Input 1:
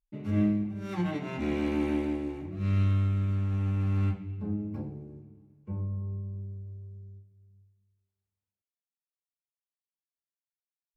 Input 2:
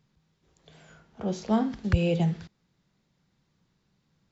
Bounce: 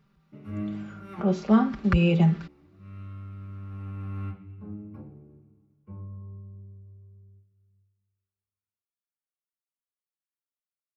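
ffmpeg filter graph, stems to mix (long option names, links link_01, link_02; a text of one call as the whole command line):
ffmpeg -i stem1.wav -i stem2.wav -filter_complex "[0:a]adelay=200,volume=-7dB[link_01];[1:a]aecho=1:1:5.1:0.71,volume=2dB,asplit=2[link_02][link_03];[link_03]apad=whole_len=492384[link_04];[link_01][link_04]sidechaincompress=threshold=-38dB:ratio=3:attack=16:release=1250[link_05];[link_05][link_02]amix=inputs=2:normalize=0,superequalizer=10b=2:13b=0.562:14b=0.447:15b=0.316" out.wav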